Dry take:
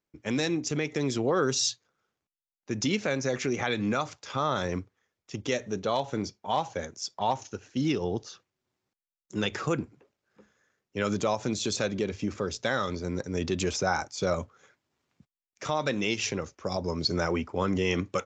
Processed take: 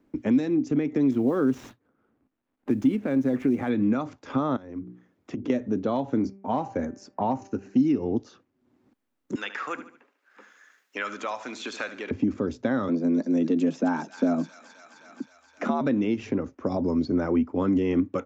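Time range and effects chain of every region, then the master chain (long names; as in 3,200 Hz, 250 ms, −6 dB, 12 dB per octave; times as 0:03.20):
0:01.11–0:03.70: running median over 9 samples + noise that follows the level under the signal 28 dB
0:04.56–0:05.50: high-pass filter 55 Hz + mains-hum notches 60/120/180/240/300/360/420/480 Hz + downward compressor 10 to 1, threshold −44 dBFS
0:06.19–0:08.17: parametric band 3,400 Hz −14 dB 0.22 octaves + hum removal 195.6 Hz, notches 16
0:09.35–0:12.11: high-pass filter 1,400 Hz + high-shelf EQ 2,800 Hz +11 dB + repeating echo 73 ms, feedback 36%, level −13.5 dB
0:12.88–0:15.81: delay with a high-pass on its return 261 ms, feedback 52%, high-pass 2,500 Hz, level −5.5 dB + frequency shifter +78 Hz
whole clip: drawn EQ curve 180 Hz 0 dB, 260 Hz +14 dB, 390 Hz +1 dB, 1,700 Hz −6 dB, 5,300 Hz −17 dB; multiband upward and downward compressor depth 70%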